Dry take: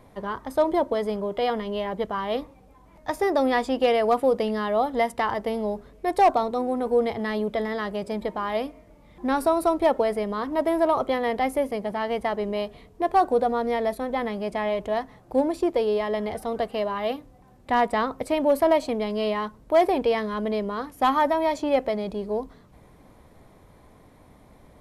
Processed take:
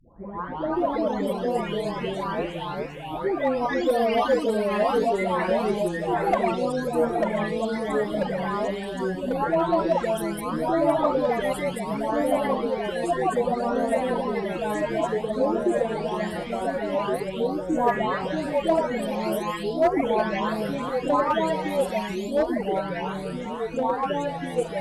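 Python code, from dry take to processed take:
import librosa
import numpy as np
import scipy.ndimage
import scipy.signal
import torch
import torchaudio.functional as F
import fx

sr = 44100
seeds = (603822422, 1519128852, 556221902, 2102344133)

y = fx.spec_delay(x, sr, highs='late', ms=767)
y = fx.clip_asym(y, sr, top_db=-15.0, bottom_db=-13.0)
y = fx.echo_pitch(y, sr, ms=118, semitones=-2, count=3, db_per_echo=-3.0)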